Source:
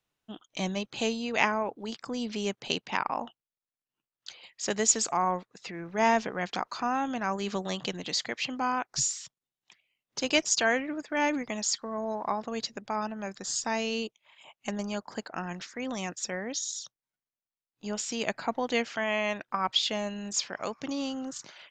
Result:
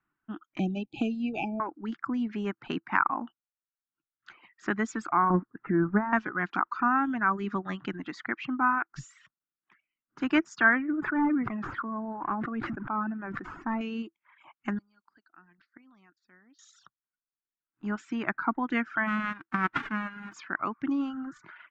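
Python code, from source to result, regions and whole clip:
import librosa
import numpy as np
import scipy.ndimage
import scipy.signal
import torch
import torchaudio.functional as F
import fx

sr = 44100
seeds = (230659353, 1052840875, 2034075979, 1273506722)

y = fx.chain(x, sr, fx.brickwall_bandstop(low_hz=850.0, high_hz=2300.0),
    fx.band_squash(depth_pct=70), at=(0.59, 1.6))
y = fx.chain(y, sr, fx.lowpass(hz=1700.0, slope=24),
    fx.over_compress(threshold_db=-30.0, ratio=-1.0),
    fx.low_shelf(hz=460.0, db=9.0), at=(5.3, 6.13))
y = fx.chain(y, sr, fx.notch(hz=880.0, q=19.0),
    fx.transient(attack_db=-6, sustain_db=2), at=(8.96, 10.23))
y = fx.chain(y, sr, fx.delta_mod(bps=64000, step_db=-46.0),
    fx.lowpass(hz=1200.0, slope=6),
    fx.sustainer(db_per_s=26.0), at=(10.9, 13.81))
y = fx.chain(y, sr, fx.lowpass_res(hz=4500.0, q=9.7),
    fx.gate_flip(shuts_db=-28.0, range_db=-27), at=(14.75, 16.59))
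y = fx.envelope_flatten(y, sr, power=0.1, at=(19.06, 20.32), fade=0.02)
y = fx.lowpass(y, sr, hz=3900.0, slope=12, at=(19.06, 20.32), fade=0.02)
y = fx.dereverb_blind(y, sr, rt60_s=1.0)
y = fx.curve_eq(y, sr, hz=(110.0, 330.0, 500.0, 1400.0, 4300.0, 9800.0), db=(0, 8, -12, 12, -21, -25))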